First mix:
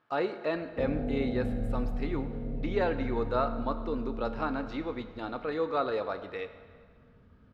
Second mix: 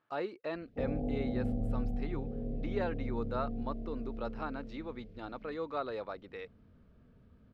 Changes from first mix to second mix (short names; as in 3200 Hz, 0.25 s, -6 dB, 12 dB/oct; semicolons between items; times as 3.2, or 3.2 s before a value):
speech -3.5 dB; reverb: off